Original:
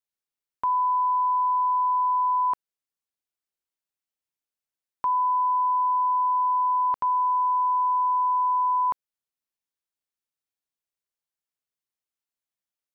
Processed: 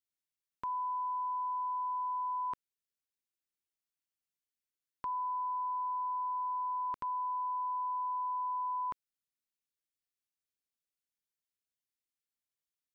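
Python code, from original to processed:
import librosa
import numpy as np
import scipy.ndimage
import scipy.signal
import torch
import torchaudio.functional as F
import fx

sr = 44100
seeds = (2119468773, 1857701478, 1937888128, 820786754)

y = fx.peak_eq(x, sr, hz=800.0, db=-13.5, octaves=0.97)
y = y * librosa.db_to_amplitude(-3.5)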